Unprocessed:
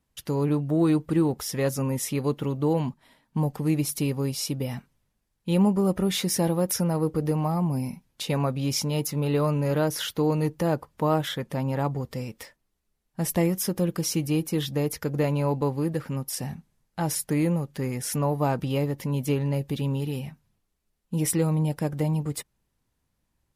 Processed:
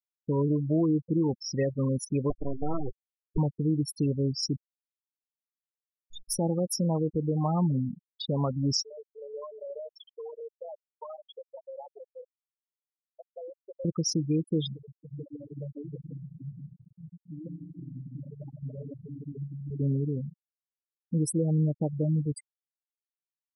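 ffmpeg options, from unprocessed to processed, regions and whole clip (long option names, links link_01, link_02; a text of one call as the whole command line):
ffmpeg -i in.wav -filter_complex "[0:a]asettb=1/sr,asplit=3[link_01][link_02][link_03];[link_01]atrim=end=2.304[link_04];[link_02]atrim=start=2.3:end=3.38,asetpts=PTS-STARTPTS,afade=type=in:duration=0.004:curve=qsin,afade=type=out:start_time=1.076:duration=0.004:curve=qsin,aeval=exprs='abs(val(0))':channel_layout=same,asuperstop=centerf=870:order=4:qfactor=7.7[link_05];[link_03]atrim=start=3.376[link_06];[link_04][link_05]acrossfade=duration=0.004:curve1=hsin:curve2=qsin[link_07];[link_07][link_06]acrossfade=duration=0.004:curve1=qsin:curve2=hsin,asettb=1/sr,asplit=3[link_08][link_09][link_10];[link_08]atrim=end=4.564[link_11];[link_09]atrim=start=4.56:end=6.39,asetpts=PTS-STARTPTS,afade=type=in:duration=0.004:curve=qsin,afade=type=out:start_time=1.826:duration=0.004:curve=qsin,aderivative,acrusher=bits=5:dc=4:mix=0:aa=0.000001[link_12];[link_10]atrim=start=6.386[link_13];[link_11][link_12]acrossfade=duration=0.004:curve1=hsin:curve2=qsin[link_14];[link_14][link_13]acrossfade=duration=0.004:curve1=qsin:curve2=hsin,asettb=1/sr,asplit=3[link_15][link_16][link_17];[link_15]atrim=end=8.824[link_18];[link_16]atrim=start=8.82:end=13.85,asetpts=PTS-STARTPTS,afade=type=in:duration=0.004:curve=qsin,afade=type=out:start_time=5.026:duration=0.004:curve=qsin,highpass=frequency=500:width=0.5412,highpass=frequency=500:width=1.3066,acompressor=threshold=-34dB:ratio=6:attack=3.2:release=140:knee=1:detection=peak,aecho=1:1:150:0.299,atrim=end_sample=221823[link_19];[link_17]atrim=start=13.846[link_20];[link_18][link_19]acrossfade=duration=0.004:curve1=hsin:curve2=qsin[link_21];[link_21][link_20]acrossfade=duration=0.004:curve1=qsin:curve2=hsin,asettb=1/sr,asplit=3[link_22][link_23][link_24];[link_22]atrim=end=14.734[link_25];[link_23]atrim=start=14.73:end=19.8,asetpts=PTS-STARTPTS,afade=type=in:duration=0.004:curve=qsin,afade=type=out:start_time=5.066:duration=0.004:curve=qsin,asubboost=boost=4:cutoff=83,acompressor=threshold=-37dB:ratio=10:attack=3.2:release=140:knee=1:detection=peak,aecho=1:1:150|277.5|385.9|478|556.3:0.794|0.631|0.501|0.398|0.316,atrim=end_sample=223587[link_26];[link_24]atrim=start=19.796[link_27];[link_25][link_26]acrossfade=duration=0.004:curve1=hsin:curve2=qsin[link_28];[link_28][link_27]acrossfade=duration=0.004:curve1=qsin:curve2=hsin,alimiter=limit=-17dB:level=0:latency=1:release=166,equalizer=frequency=4900:width_type=o:width=0.64:gain=3.5,afftfilt=real='re*gte(hypot(re,im),0.0794)':imag='im*gte(hypot(re,im),0.0794)':win_size=1024:overlap=0.75" out.wav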